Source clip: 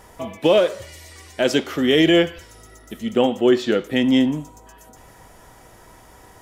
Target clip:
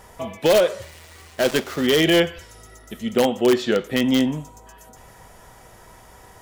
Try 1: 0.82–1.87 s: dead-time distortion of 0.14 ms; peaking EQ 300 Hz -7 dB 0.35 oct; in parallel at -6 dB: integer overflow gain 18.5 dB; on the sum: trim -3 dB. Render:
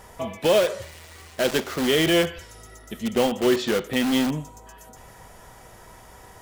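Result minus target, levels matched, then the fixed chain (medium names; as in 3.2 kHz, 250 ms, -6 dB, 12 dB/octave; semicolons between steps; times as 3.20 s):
integer overflow: distortion +25 dB
0.82–1.87 s: dead-time distortion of 0.14 ms; peaking EQ 300 Hz -7 dB 0.35 oct; in parallel at -6 dB: integer overflow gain 8.5 dB; on the sum: trim -3 dB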